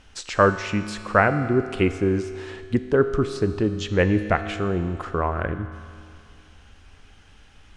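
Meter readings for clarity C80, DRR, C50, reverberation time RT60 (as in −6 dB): 11.5 dB, 9.5 dB, 11.0 dB, 2.4 s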